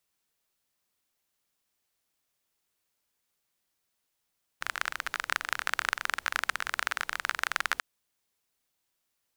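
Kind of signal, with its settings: rain from filtered ticks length 3.19 s, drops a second 26, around 1.5 kHz, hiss -23.5 dB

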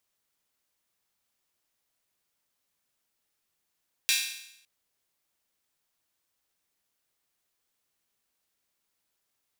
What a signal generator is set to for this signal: open hi-hat length 0.56 s, high-pass 2.6 kHz, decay 0.78 s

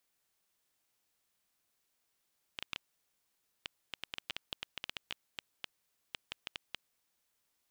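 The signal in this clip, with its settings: random clicks 6.8 per s -20.5 dBFS 4.27 s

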